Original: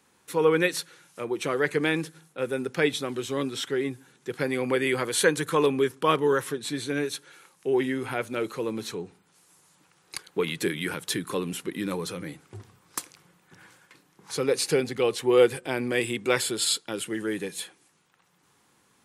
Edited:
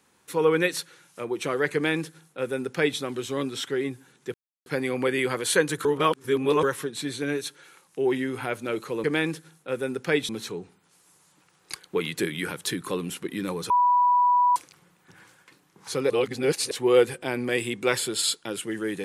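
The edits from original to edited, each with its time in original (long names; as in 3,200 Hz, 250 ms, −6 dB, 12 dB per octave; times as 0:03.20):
0:01.74–0:02.99: duplicate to 0:08.72
0:04.34: splice in silence 0.32 s
0:05.53–0:06.31: reverse
0:12.13–0:12.99: beep over 982 Hz −16.5 dBFS
0:14.53–0:15.14: reverse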